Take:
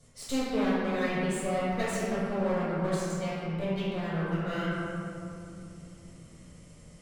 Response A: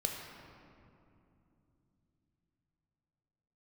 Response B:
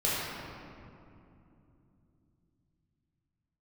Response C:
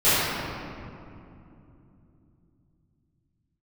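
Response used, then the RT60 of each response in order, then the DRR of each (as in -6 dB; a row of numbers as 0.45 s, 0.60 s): B; 2.8 s, 2.8 s, 2.8 s; 0.0 dB, -10.0 dB, -19.5 dB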